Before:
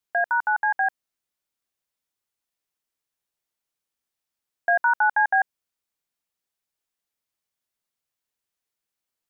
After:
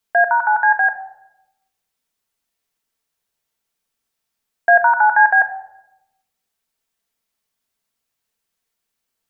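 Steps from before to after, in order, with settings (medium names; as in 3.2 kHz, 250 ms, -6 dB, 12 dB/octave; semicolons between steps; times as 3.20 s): simulated room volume 3100 m³, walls furnished, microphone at 1.6 m; trim +6.5 dB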